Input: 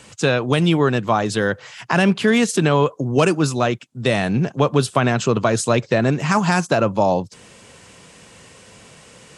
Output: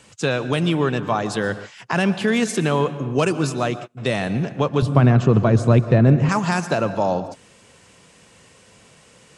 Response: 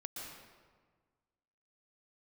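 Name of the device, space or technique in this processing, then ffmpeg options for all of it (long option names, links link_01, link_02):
keyed gated reverb: -filter_complex "[0:a]asplit=3[link_01][link_02][link_03];[1:a]atrim=start_sample=2205[link_04];[link_02][link_04]afir=irnorm=-1:irlink=0[link_05];[link_03]apad=whole_len=413490[link_06];[link_05][link_06]sidechaingate=range=-33dB:threshold=-33dB:ratio=16:detection=peak,volume=-6.5dB[link_07];[link_01][link_07]amix=inputs=2:normalize=0,asettb=1/sr,asplit=3[link_08][link_09][link_10];[link_08]atrim=end=4.824[link_11];[link_09]atrim=start=4.82:end=6.29,asetpts=PTS-STARTPTS,afade=type=in:duration=0.004:curve=qsin,afade=type=out:start_time=1.466:duration=0.004:curve=qsin,aemphasis=mode=reproduction:type=riaa[link_12];[link_10]atrim=start=6.286[link_13];[link_11][link_12]acrossfade=duration=0.004:curve1=hsin:curve2=qsin[link_14];[link_14][link_13]acrossfade=duration=0.004:curve1=qsin:curve2=hsin,volume=-5.5dB"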